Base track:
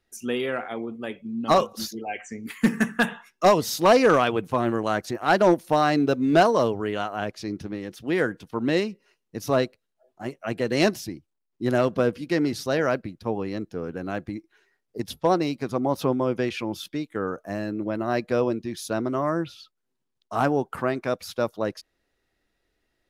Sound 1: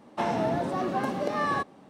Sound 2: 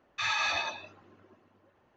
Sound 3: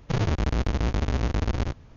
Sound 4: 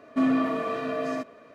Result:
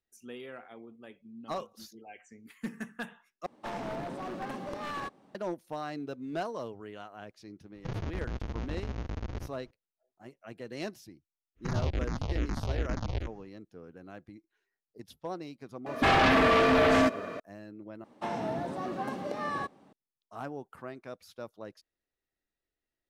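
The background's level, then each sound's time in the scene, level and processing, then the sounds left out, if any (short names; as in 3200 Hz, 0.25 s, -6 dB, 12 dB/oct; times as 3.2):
base track -17 dB
3.46 replace with 1 -8.5 dB + one-sided fold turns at -25 dBFS
7.75 add 3 -11.5 dB + high shelf 4000 Hz -6 dB
11.55 add 3 -4.5 dB, fades 0.10 s + endless phaser -2.4 Hz
15.86 add 4 -5 dB + sine folder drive 13 dB, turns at -14 dBFS
18.04 replace with 1 -6.5 dB
not used: 2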